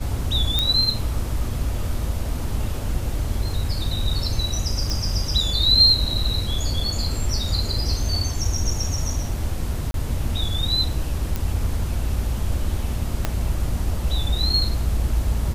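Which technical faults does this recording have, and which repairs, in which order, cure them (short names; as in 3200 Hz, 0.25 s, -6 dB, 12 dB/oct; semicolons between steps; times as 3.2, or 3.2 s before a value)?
0.59 pop -5 dBFS
4.9 pop
9.91–9.94 gap 32 ms
11.36 pop
13.25 pop -7 dBFS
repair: de-click; interpolate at 9.91, 32 ms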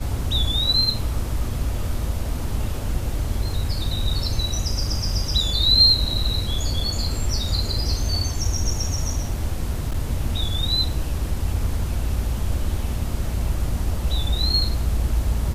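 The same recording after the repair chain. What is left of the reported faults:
13.25 pop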